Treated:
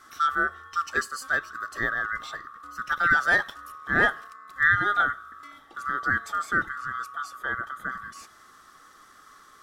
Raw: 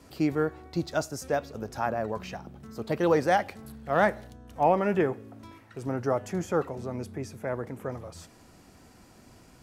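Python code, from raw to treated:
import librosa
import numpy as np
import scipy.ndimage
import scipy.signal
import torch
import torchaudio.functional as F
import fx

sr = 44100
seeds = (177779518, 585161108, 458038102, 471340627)

y = fx.band_swap(x, sr, width_hz=1000)
y = y * 10.0 ** (1.5 / 20.0)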